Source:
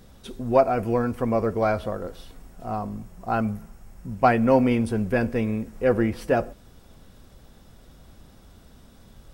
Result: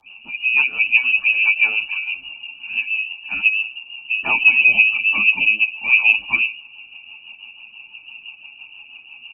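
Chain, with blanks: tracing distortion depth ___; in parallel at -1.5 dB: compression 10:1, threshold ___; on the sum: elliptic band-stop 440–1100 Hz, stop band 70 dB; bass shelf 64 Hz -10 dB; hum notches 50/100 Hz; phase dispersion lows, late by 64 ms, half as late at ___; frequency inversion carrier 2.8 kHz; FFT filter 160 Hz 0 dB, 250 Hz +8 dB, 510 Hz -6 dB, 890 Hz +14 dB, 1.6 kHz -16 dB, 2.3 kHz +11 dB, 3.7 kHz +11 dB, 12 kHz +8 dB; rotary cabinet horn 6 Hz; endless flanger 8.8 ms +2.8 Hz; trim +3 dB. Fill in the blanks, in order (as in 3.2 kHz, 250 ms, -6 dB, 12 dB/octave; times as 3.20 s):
0.099 ms, -31 dBFS, 350 Hz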